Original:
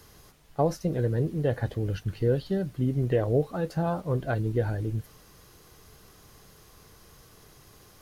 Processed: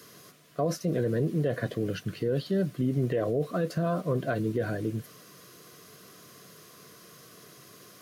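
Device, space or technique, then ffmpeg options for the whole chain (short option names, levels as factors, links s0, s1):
PA system with an anti-feedback notch: -af "highpass=f=140:w=0.5412,highpass=f=140:w=1.3066,asuperstop=centerf=850:order=12:qfactor=4.2,alimiter=limit=0.0708:level=0:latency=1:release=33,volume=1.58"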